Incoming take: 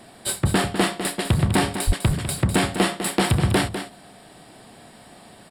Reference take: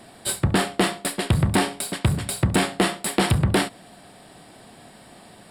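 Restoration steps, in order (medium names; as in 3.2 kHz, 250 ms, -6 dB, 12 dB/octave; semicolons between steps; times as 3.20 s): clip repair -8.5 dBFS; de-plosive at 1.86 s; inverse comb 201 ms -9.5 dB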